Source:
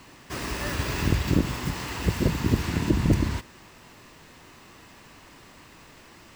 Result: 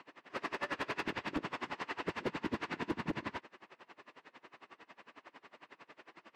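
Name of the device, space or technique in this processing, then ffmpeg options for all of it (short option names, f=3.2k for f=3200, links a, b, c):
helicopter radio: -af "highpass=370,lowpass=2.6k,aeval=exprs='val(0)*pow(10,-26*(0.5-0.5*cos(2*PI*11*n/s))/20)':c=same,asoftclip=type=hard:threshold=-30.5dB,volume=1.5dB"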